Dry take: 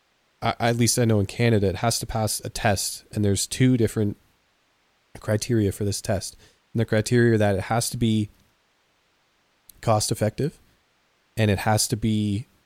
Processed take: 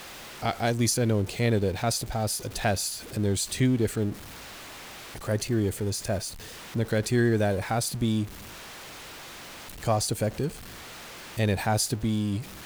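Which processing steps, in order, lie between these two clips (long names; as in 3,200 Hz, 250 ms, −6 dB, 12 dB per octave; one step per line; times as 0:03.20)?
converter with a step at zero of −32 dBFS
level −5 dB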